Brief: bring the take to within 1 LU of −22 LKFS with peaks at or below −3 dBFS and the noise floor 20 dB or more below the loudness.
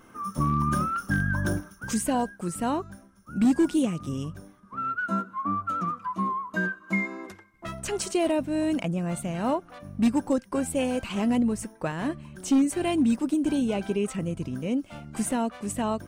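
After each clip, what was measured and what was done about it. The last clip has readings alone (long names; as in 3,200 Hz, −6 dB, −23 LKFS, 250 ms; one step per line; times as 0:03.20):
share of clipped samples 0.4%; peaks flattened at −16.0 dBFS; integrated loudness −27.5 LKFS; sample peak −16.0 dBFS; target loudness −22.0 LKFS
→ clipped peaks rebuilt −16 dBFS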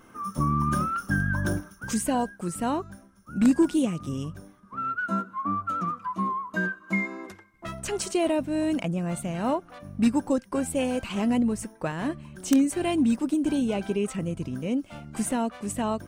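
share of clipped samples 0.0%; integrated loudness −27.5 LKFS; sample peak −7.0 dBFS; target loudness −22.0 LKFS
→ level +5.5 dB
brickwall limiter −3 dBFS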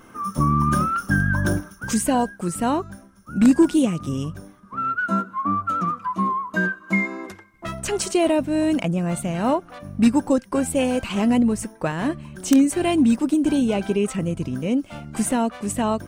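integrated loudness −22.0 LKFS; sample peak −3.0 dBFS; background noise floor −48 dBFS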